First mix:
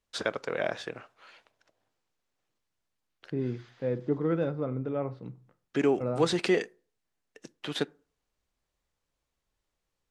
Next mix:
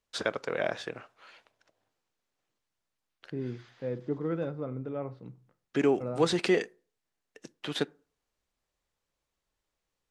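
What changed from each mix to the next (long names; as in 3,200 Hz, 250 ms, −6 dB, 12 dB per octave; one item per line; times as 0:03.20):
second voice −4.0 dB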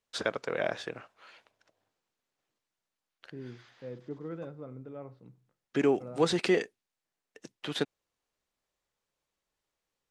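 first voice: send off
second voice −8.0 dB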